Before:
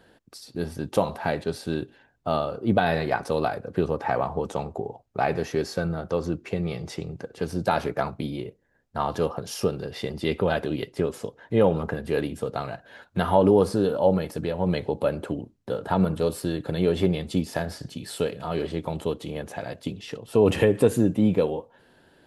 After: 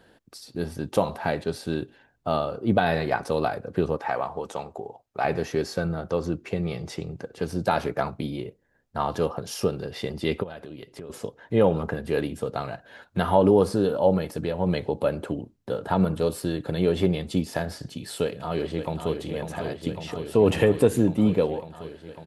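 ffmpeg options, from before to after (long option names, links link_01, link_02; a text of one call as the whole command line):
ffmpeg -i in.wav -filter_complex "[0:a]asettb=1/sr,asplit=3[link_01][link_02][link_03];[link_01]atrim=end=3.974[link_04];[link_02]atrim=start=3.97:end=5.25,asetpts=PTS-STARTPTS,afade=type=in:duration=0.004:curve=qsin,afade=type=out:start_time=1.276:duration=0.004:curve=qsin,lowshelf=frequency=340:gain=-11.5[link_05];[link_03]atrim=start=5.246[link_06];[link_04][link_05]acrossfade=duration=0.004:curve1=hsin:curve2=qsin[link_07];[link_07][link_06]acrossfade=duration=0.004:curve1=qsin:curve2=hsin,asplit=3[link_08][link_09][link_10];[link_08]afade=type=out:start_time=10.42:duration=0.02[link_11];[link_09]acompressor=threshold=-40dB:ratio=3:attack=3.2:release=140:knee=1:detection=peak,afade=type=in:start_time=10.42:duration=0.02,afade=type=out:start_time=11.09:duration=0.02[link_12];[link_10]afade=type=in:start_time=11.09:duration=0.02[link_13];[link_11][link_12][link_13]amix=inputs=3:normalize=0,asplit=2[link_14][link_15];[link_15]afade=type=in:start_time=18.23:duration=0.01,afade=type=out:start_time=19.18:duration=0.01,aecho=0:1:550|1100|1650|2200|2750|3300|3850|4400|4950|5500|6050|6600:0.446684|0.379681|0.322729|0.27432|0.233172|0.198196|0.168467|0.143197|0.121717|0.103459|0.0879406|0.0747495[link_16];[link_14][link_16]amix=inputs=2:normalize=0" out.wav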